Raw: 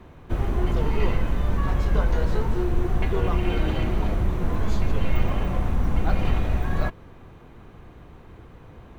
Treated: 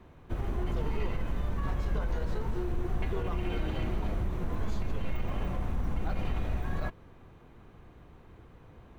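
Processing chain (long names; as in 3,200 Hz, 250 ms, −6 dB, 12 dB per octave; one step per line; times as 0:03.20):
brickwall limiter −14.5 dBFS, peak gain reduction 6 dB
level −7.5 dB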